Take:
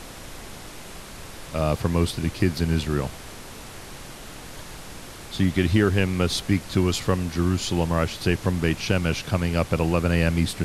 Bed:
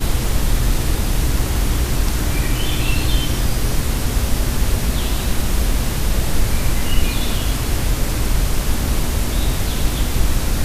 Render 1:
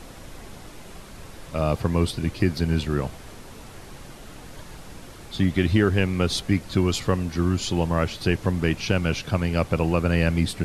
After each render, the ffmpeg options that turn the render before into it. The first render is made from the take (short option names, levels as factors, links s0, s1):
-af "afftdn=nr=6:nf=-40"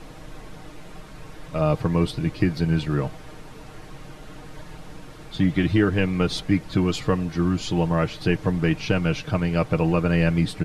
-af "highshelf=f=5100:g=-10,aecho=1:1:6.5:0.54"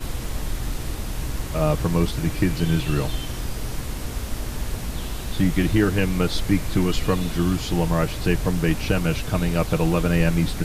-filter_complex "[1:a]volume=0.299[s0];[0:a][s0]amix=inputs=2:normalize=0"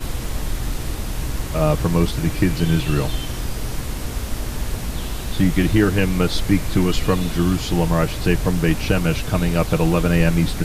-af "volume=1.41"